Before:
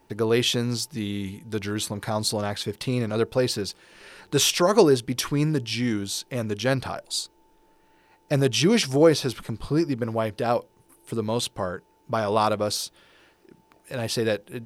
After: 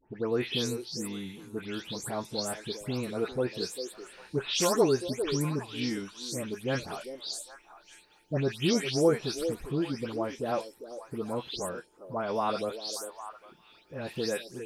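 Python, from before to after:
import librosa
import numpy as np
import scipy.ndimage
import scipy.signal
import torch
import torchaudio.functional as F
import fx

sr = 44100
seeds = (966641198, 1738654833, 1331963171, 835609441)

y = fx.spec_delay(x, sr, highs='late', ms=223)
y = fx.echo_stepped(y, sr, ms=400, hz=410.0, octaves=1.4, feedback_pct=70, wet_db=-7.5)
y = y * 10.0 ** (-7.0 / 20.0)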